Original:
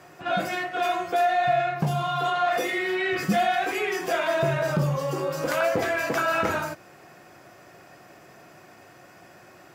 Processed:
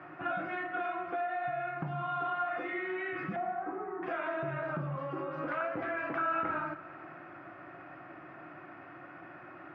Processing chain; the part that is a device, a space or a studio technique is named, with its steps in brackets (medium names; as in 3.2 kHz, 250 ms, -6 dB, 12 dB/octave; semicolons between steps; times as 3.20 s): 3.36–4.03 s: steep low-pass 1.3 kHz 36 dB/octave; bass amplifier (compression 3:1, threshold -37 dBFS, peak gain reduction 13.5 dB; cabinet simulation 67–2400 Hz, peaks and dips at 90 Hz -6 dB, 210 Hz -6 dB, 310 Hz +8 dB, 450 Hz -10 dB, 1.3 kHz +7 dB); Schroeder reverb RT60 2.2 s, combs from 33 ms, DRR 12.5 dB